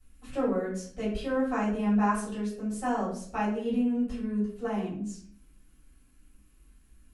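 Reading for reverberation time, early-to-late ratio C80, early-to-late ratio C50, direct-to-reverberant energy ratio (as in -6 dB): 0.55 s, 8.0 dB, 4.5 dB, -11.5 dB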